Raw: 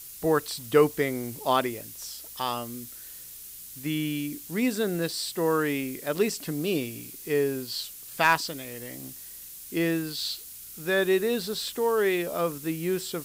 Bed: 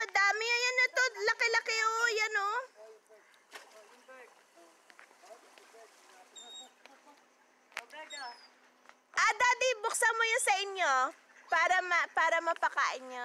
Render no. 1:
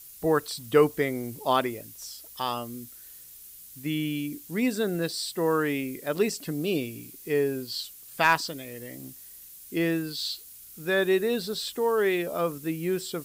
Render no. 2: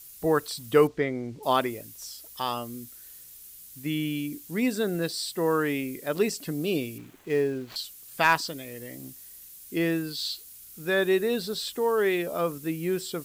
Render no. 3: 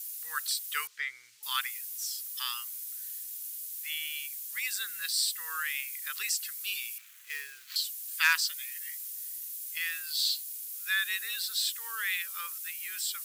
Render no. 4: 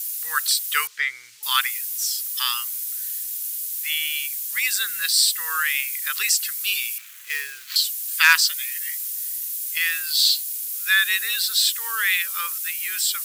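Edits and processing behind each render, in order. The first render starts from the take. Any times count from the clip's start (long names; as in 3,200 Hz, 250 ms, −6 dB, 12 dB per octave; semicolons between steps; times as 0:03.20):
broadband denoise 6 dB, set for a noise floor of −44 dBFS
0:00.87–0:01.43: high-frequency loss of the air 140 metres; 0:06.98–0:07.76: running median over 9 samples
inverse Chebyshev high-pass filter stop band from 720 Hz, stop band 40 dB; high-shelf EQ 5,300 Hz +8 dB
level +11 dB; brickwall limiter −2 dBFS, peak gain reduction 2.5 dB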